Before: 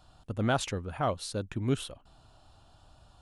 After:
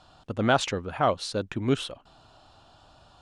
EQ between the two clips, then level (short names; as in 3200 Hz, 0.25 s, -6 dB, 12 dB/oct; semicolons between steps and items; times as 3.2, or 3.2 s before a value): LPF 6200 Hz 12 dB/oct; low shelf 130 Hz -12 dB; +7.0 dB